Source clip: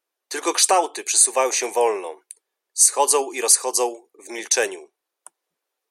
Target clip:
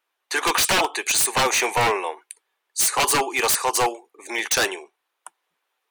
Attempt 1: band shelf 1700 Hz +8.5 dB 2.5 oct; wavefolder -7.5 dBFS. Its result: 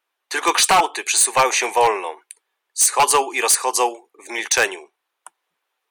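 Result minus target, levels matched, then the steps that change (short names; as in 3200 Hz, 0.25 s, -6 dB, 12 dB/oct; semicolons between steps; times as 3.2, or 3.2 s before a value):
wavefolder: distortion -12 dB
change: wavefolder -13.5 dBFS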